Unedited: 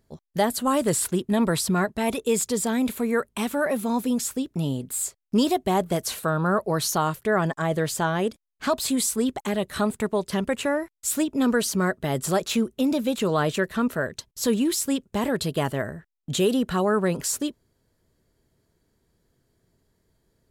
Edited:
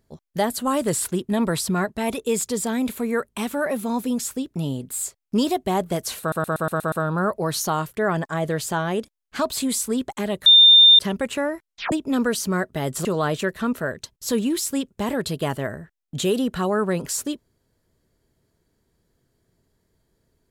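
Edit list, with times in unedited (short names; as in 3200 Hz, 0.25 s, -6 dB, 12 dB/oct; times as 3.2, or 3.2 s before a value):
6.2 stutter 0.12 s, 7 plays
9.74–10.27 bleep 3610 Hz -7.5 dBFS
10.94 tape stop 0.26 s
12.33–13.2 cut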